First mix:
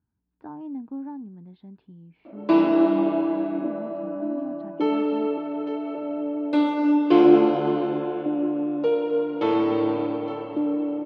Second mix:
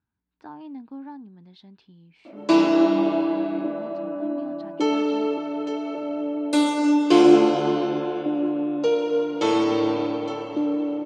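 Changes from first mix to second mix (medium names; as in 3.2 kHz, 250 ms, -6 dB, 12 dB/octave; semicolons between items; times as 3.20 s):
speech: add tilt shelf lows -5.5 dB; master: remove distance through air 370 m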